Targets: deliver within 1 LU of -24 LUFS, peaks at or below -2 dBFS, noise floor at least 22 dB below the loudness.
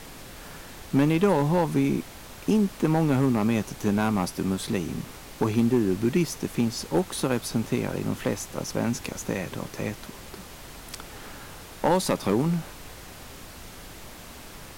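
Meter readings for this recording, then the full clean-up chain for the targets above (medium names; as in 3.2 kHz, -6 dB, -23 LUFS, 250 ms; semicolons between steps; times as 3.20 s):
clipped samples 0.5%; clipping level -14.0 dBFS; noise floor -44 dBFS; noise floor target -48 dBFS; loudness -26.0 LUFS; peak level -14.0 dBFS; loudness target -24.0 LUFS
-> clip repair -14 dBFS; noise print and reduce 6 dB; trim +2 dB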